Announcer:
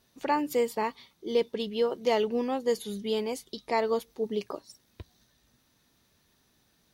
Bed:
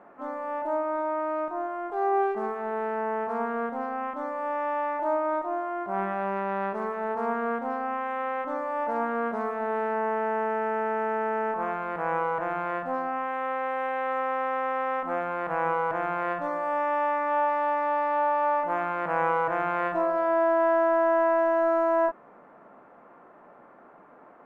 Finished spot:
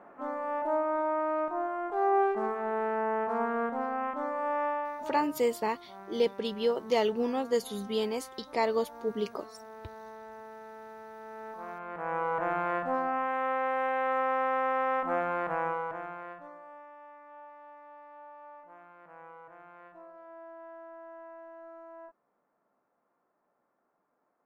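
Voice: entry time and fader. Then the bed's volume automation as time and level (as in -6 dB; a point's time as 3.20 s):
4.85 s, -1.0 dB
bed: 4.65 s -1 dB
5.34 s -19 dB
11.15 s -19 dB
12.47 s -0.5 dB
15.37 s -0.5 dB
16.95 s -25 dB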